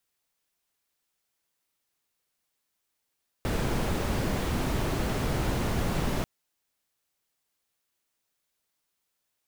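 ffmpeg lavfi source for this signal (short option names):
-f lavfi -i "anoisesrc=c=brown:a=0.197:d=2.79:r=44100:seed=1"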